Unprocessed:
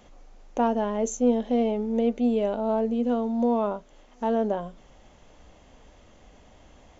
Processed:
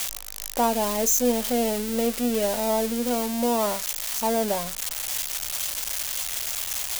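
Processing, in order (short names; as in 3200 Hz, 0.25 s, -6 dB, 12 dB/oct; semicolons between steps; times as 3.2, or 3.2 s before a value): switching spikes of -19 dBFS; bell 300 Hz -7 dB 1.4 oct; gain +3.5 dB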